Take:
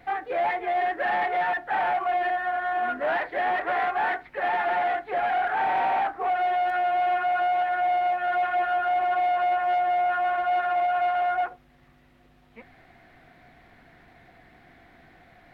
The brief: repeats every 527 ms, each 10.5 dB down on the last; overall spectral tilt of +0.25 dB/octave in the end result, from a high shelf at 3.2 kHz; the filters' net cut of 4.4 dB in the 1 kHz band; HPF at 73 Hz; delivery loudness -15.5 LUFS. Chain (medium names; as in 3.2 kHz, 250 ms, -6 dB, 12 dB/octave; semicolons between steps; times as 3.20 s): high-pass 73 Hz; peaking EQ 1 kHz -8.5 dB; treble shelf 3.2 kHz +6.5 dB; feedback delay 527 ms, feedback 30%, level -10.5 dB; trim +12.5 dB